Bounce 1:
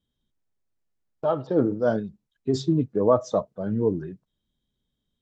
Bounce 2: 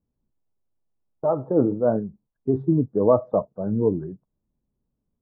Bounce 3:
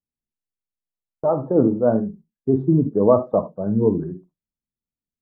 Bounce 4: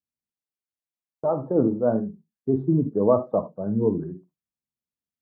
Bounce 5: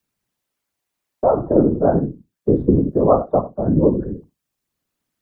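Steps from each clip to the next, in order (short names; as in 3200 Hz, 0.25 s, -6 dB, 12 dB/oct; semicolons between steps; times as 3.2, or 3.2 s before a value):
LPF 1100 Hz 24 dB/oct; gain +2 dB
gate with hold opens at -44 dBFS; on a send at -9.5 dB: reverb RT60 0.15 s, pre-delay 44 ms; on the sum: gain +2.5 dB
HPF 69 Hz; gain -4 dB
whisperiser; three-band squash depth 40%; gain +6 dB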